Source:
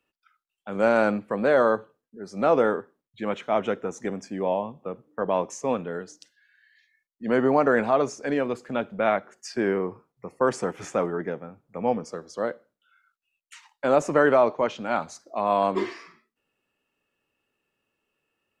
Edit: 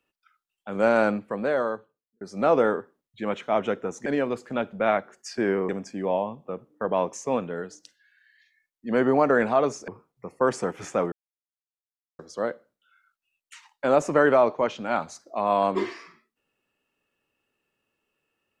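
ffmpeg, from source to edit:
-filter_complex "[0:a]asplit=7[a][b][c][d][e][f][g];[a]atrim=end=2.21,asetpts=PTS-STARTPTS,afade=t=out:st=1.03:d=1.18[h];[b]atrim=start=2.21:end=4.062,asetpts=PTS-STARTPTS,afade=t=in:d=0.004:c=hsin[i];[c]atrim=start=8.248:end=9.882[j];[d]atrim=start=4.058:end=8.252[k];[e]atrim=start=9.878:end=11.12,asetpts=PTS-STARTPTS,afade=t=out:st=1.238:d=0.004:c=hsin[l];[f]atrim=start=11.12:end=12.19,asetpts=PTS-STARTPTS,volume=0[m];[g]atrim=start=12.19,asetpts=PTS-STARTPTS,afade=t=in:d=0.004:c=hsin[n];[h][i]concat=n=2:v=0:a=1[o];[o][j]acrossfade=d=0.004:c1=hsin:c2=hsin[p];[p][k]acrossfade=d=0.004:c1=hsin:c2=hsin[q];[l][m][n]concat=n=3:v=0:a=1[r];[q][r]acrossfade=d=0.004:c1=hsin:c2=hsin"

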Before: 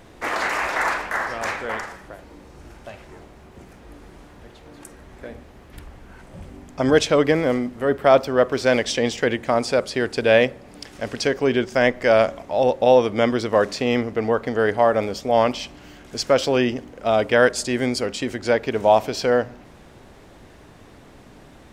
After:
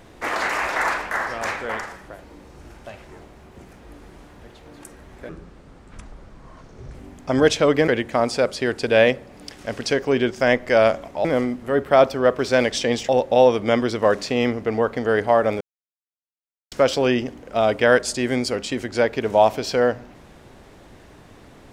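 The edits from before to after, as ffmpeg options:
-filter_complex "[0:a]asplit=8[a][b][c][d][e][f][g][h];[a]atrim=end=5.294[i];[b]atrim=start=5.29:end=6.45,asetpts=PTS-STARTPTS,asetrate=30870,aresample=44100[j];[c]atrim=start=6.446:end=7.382[k];[d]atrim=start=9.218:end=12.592[l];[e]atrim=start=7.378:end=9.222[m];[f]atrim=start=12.588:end=15.11,asetpts=PTS-STARTPTS,afade=t=out:st=2.518:d=0.004:c=hsin[n];[g]atrim=start=15.11:end=16.22,asetpts=PTS-STARTPTS,volume=0[o];[h]atrim=start=16.22,asetpts=PTS-STARTPTS,afade=t=in:d=0.004:c=hsin[p];[i][j]acrossfade=d=0.004:c1=hsin:c2=hsin[q];[q][k]acrossfade=d=0.004:c1=hsin:c2=hsin[r];[r][l]acrossfade=d=0.004:c1=hsin:c2=hsin[s];[s][m]acrossfade=d=0.004:c1=hsin:c2=hsin[t];[n][o][p]concat=n=3:v=0:a=1[u];[t][u]acrossfade=d=0.004:c1=hsin:c2=hsin"

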